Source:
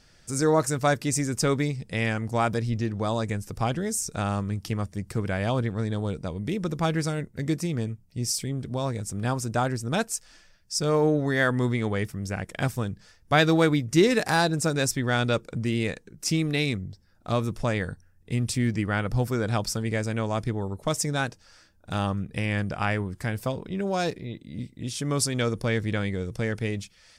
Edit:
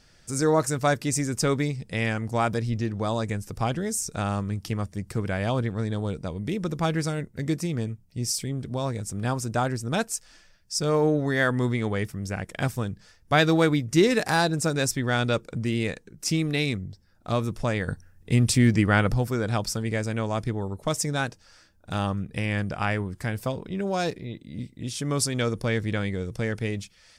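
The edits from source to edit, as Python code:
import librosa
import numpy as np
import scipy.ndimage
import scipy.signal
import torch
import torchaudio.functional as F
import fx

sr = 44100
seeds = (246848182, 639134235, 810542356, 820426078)

y = fx.edit(x, sr, fx.clip_gain(start_s=17.88, length_s=1.26, db=6.0), tone=tone)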